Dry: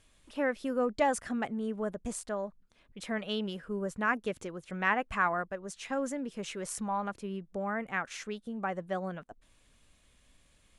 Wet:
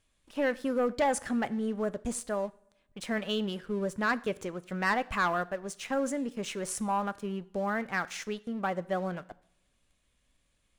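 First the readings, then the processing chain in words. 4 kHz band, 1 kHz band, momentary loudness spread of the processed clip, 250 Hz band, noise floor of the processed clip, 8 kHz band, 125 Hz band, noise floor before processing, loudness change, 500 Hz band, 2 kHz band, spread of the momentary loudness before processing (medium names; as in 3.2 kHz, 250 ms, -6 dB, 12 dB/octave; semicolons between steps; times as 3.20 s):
+3.0 dB, +1.5 dB, 9 LU, +2.5 dB, -73 dBFS, +3.0 dB, +3.0 dB, -66 dBFS, +2.0 dB, +2.5 dB, +1.0 dB, 11 LU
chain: waveshaping leveller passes 2; two-slope reverb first 0.56 s, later 1.6 s, from -22 dB, DRR 16 dB; trim -4.5 dB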